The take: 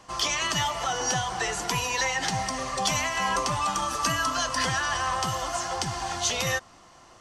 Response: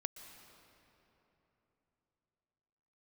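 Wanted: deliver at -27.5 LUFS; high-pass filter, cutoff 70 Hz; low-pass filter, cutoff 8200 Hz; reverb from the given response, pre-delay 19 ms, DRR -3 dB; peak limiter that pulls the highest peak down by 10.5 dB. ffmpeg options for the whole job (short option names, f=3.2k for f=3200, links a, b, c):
-filter_complex "[0:a]highpass=70,lowpass=8.2k,alimiter=limit=-21dB:level=0:latency=1,asplit=2[a][b];[1:a]atrim=start_sample=2205,adelay=19[c];[b][c]afir=irnorm=-1:irlink=0,volume=4.5dB[d];[a][d]amix=inputs=2:normalize=0,volume=-2.5dB"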